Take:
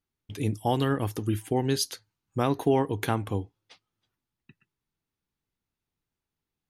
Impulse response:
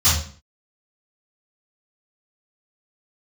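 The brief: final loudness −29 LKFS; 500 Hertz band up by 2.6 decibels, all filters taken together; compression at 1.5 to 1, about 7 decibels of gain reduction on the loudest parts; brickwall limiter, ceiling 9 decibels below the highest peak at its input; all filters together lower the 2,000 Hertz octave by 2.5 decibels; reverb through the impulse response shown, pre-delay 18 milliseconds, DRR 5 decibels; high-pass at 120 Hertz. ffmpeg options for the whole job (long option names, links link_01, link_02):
-filter_complex "[0:a]highpass=120,equalizer=frequency=500:width_type=o:gain=3.5,equalizer=frequency=2000:width_type=o:gain=-3.5,acompressor=threshold=-36dB:ratio=1.5,alimiter=level_in=1dB:limit=-24dB:level=0:latency=1,volume=-1dB,asplit=2[link_01][link_02];[1:a]atrim=start_sample=2205,adelay=18[link_03];[link_02][link_03]afir=irnorm=-1:irlink=0,volume=-23.5dB[link_04];[link_01][link_04]amix=inputs=2:normalize=0,volume=6dB"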